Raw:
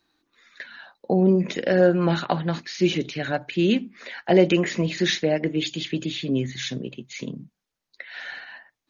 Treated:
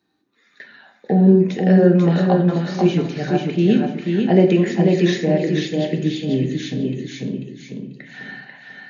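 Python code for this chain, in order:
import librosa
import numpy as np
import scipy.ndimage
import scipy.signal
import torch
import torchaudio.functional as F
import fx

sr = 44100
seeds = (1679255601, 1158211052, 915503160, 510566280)

p1 = scipy.signal.sosfilt(scipy.signal.butter(2, 100.0, 'highpass', fs=sr, output='sos'), x)
p2 = fx.low_shelf(p1, sr, hz=370.0, db=8.0)
p3 = fx.small_body(p2, sr, hz=(210.0, 410.0, 770.0, 1800.0), ring_ms=45, db=7)
p4 = p3 + fx.echo_feedback(p3, sr, ms=491, feedback_pct=29, wet_db=-4, dry=0)
p5 = fx.room_shoebox(p4, sr, seeds[0], volume_m3=150.0, walls='mixed', distance_m=0.5)
y = p5 * librosa.db_to_amplitude(-5.0)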